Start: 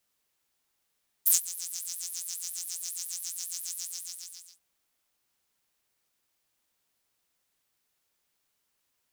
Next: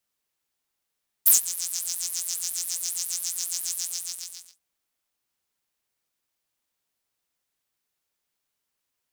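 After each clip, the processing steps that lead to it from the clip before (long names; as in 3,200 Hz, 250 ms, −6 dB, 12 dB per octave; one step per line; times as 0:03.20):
leveller curve on the samples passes 2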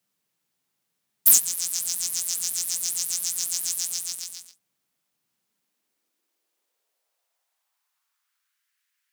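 low-shelf EQ 140 Hz +6.5 dB
high-pass filter sweep 160 Hz → 1,700 Hz, 0:05.27–0:08.69
level +2.5 dB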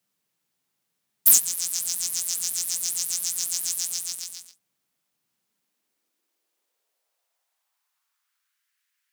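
no processing that can be heard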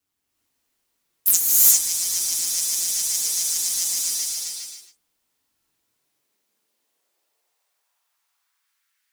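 flanger 0.54 Hz, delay 0.7 ms, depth 2.5 ms, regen −54%
ring modulation 97 Hz
reverb whose tail is shaped and stops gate 420 ms rising, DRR −6 dB
level +4.5 dB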